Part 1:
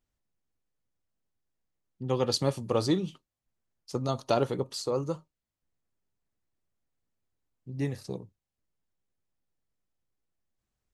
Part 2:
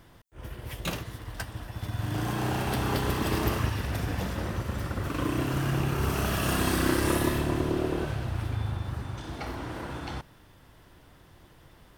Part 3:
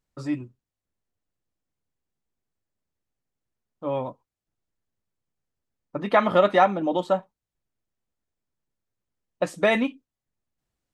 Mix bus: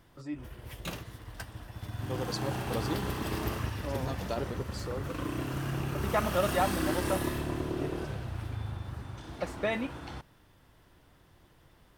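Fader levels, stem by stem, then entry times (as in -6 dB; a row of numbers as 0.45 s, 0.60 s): -9.0 dB, -6.0 dB, -10.5 dB; 0.00 s, 0.00 s, 0.00 s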